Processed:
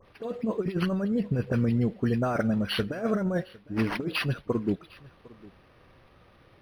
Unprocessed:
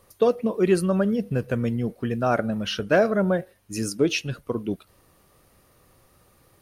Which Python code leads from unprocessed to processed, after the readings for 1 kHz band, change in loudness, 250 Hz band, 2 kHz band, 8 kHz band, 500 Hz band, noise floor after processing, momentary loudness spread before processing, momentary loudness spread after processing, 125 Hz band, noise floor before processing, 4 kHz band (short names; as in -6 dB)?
-6.5 dB, -4.0 dB, -2.0 dB, -4.5 dB, under -15 dB, -8.0 dB, -58 dBFS, 10 LU, 6 LU, -0.5 dB, -60 dBFS, -3.0 dB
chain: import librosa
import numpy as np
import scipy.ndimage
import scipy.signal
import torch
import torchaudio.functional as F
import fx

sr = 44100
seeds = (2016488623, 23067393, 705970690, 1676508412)

p1 = fx.dynamic_eq(x, sr, hz=620.0, q=0.74, threshold_db=-30.0, ratio=4.0, max_db=-4)
p2 = fx.over_compress(p1, sr, threshold_db=-25.0, ratio=-0.5)
p3 = fx.dispersion(p2, sr, late='highs', ms=52.0, hz=2700.0)
p4 = p3 + fx.echo_single(p3, sr, ms=756, db=-22.5, dry=0)
y = np.interp(np.arange(len(p4)), np.arange(len(p4))[::6], p4[::6])